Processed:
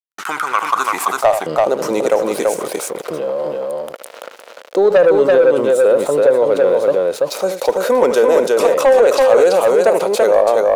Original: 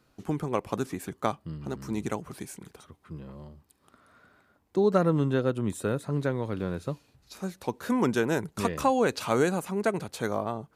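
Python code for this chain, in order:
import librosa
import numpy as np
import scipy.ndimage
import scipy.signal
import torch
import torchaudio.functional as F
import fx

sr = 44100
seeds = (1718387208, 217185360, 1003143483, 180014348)

p1 = fx.low_shelf(x, sr, hz=330.0, db=3.5)
p2 = fx.notch(p1, sr, hz=1700.0, q=11.0)
p3 = fx.rider(p2, sr, range_db=3, speed_s=2.0)
p4 = p2 + (p3 * 10.0 ** (-1.5 / 20.0))
p5 = np.sign(p4) * np.maximum(np.abs(p4) - 10.0 ** (-47.5 / 20.0), 0.0)
p6 = fx.filter_sweep_highpass(p5, sr, from_hz=1400.0, to_hz=530.0, start_s=0.56, end_s=1.43, q=5.5)
p7 = 10.0 ** (-6.0 / 20.0) * np.tanh(p6 / 10.0 ** (-6.0 / 20.0))
p8 = p7 + fx.echo_multitap(p7, sr, ms=(75, 335), db=(-15.0, -3.5), dry=0)
y = fx.env_flatten(p8, sr, amount_pct=50)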